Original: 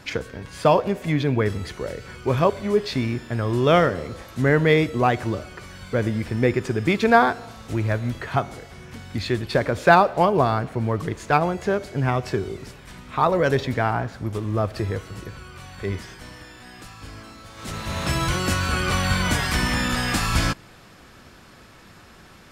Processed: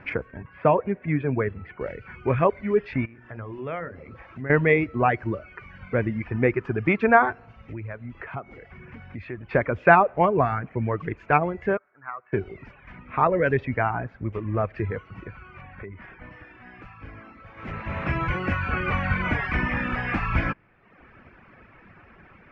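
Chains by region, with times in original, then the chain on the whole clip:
0.42–1.81 s: high-pass 67 Hz + distance through air 330 m
3.05–4.50 s: hum notches 60/120/180/240/300/360/420/480/540/600 Hz + compression 2:1, threshold -37 dBFS
7.55–9.51 s: steep low-pass 9.8 kHz + compression 2:1, threshold -36 dBFS
11.77–12.33 s: band-pass filter 1.3 kHz, Q 3.6 + distance through air 480 m
15.61–16.31 s: low-pass 3.2 kHz + compression 10:1, threshold -32 dBFS
whole clip: low-pass 5.3 kHz 24 dB/octave; reverb removal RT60 0.86 s; FFT filter 960 Hz 0 dB, 2.4 kHz +3 dB, 3.9 kHz -23 dB; trim -1 dB

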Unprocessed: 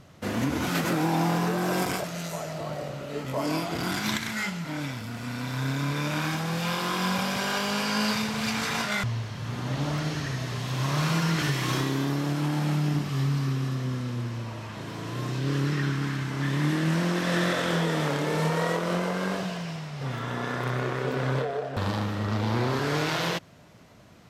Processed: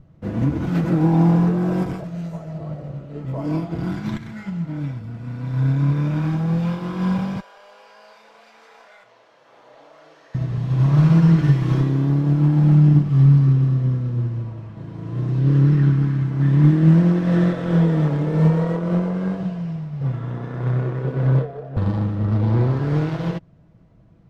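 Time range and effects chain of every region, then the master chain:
7.40–10.35 s: Chebyshev high-pass 530 Hz, order 3 + compression 2.5:1, threshold -36 dBFS + flutter echo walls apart 5.4 m, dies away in 0.22 s
whole clip: tilt EQ -4.5 dB/octave; comb 6.1 ms, depth 34%; upward expansion 1.5:1, over -30 dBFS

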